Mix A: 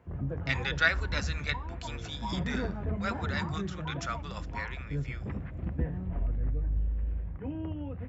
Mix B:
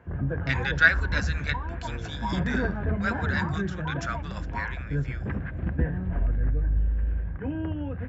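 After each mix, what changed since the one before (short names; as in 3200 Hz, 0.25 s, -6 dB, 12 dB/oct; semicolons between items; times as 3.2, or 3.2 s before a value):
background +5.5 dB; master: add bell 1600 Hz +13 dB 0.23 oct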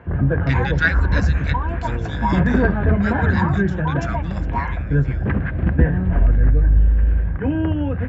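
background +10.5 dB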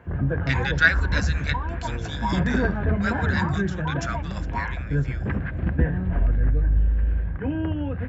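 background -6.0 dB; master: add high shelf 4400 Hz +7 dB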